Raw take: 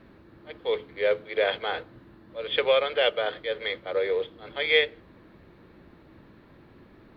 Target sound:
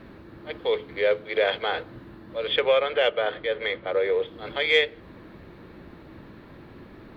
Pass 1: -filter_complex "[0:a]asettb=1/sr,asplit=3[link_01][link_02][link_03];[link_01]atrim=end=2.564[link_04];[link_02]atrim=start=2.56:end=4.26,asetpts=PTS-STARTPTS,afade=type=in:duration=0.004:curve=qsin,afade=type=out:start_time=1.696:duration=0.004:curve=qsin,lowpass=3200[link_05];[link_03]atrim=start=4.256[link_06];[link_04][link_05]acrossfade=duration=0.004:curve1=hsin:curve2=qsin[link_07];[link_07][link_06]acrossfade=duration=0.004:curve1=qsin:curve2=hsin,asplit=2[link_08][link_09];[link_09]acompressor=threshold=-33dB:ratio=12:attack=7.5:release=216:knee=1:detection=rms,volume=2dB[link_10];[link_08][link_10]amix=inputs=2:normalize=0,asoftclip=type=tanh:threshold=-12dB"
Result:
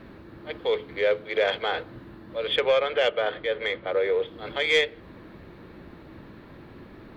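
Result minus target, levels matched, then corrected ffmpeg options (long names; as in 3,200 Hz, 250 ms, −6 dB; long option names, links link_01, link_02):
soft clipping: distortion +12 dB
-filter_complex "[0:a]asettb=1/sr,asplit=3[link_01][link_02][link_03];[link_01]atrim=end=2.564[link_04];[link_02]atrim=start=2.56:end=4.26,asetpts=PTS-STARTPTS,afade=type=in:duration=0.004:curve=qsin,afade=type=out:start_time=1.696:duration=0.004:curve=qsin,lowpass=3200[link_05];[link_03]atrim=start=4.256[link_06];[link_04][link_05]acrossfade=duration=0.004:curve1=hsin:curve2=qsin[link_07];[link_07][link_06]acrossfade=duration=0.004:curve1=qsin:curve2=hsin,asplit=2[link_08][link_09];[link_09]acompressor=threshold=-33dB:ratio=12:attack=7.5:release=216:knee=1:detection=rms,volume=2dB[link_10];[link_08][link_10]amix=inputs=2:normalize=0,asoftclip=type=tanh:threshold=-5dB"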